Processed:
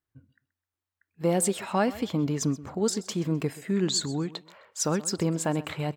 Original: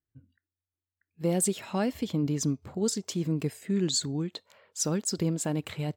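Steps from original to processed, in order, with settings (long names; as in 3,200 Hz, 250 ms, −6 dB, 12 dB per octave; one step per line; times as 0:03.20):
parametric band 1,100 Hz +8.5 dB 2.1 octaves
on a send: repeating echo 129 ms, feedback 26%, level −18 dB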